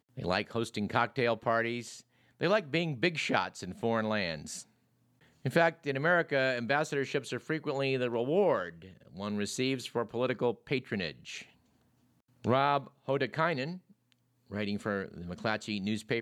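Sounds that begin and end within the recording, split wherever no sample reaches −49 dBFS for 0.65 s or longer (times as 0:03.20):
0:05.45–0:11.45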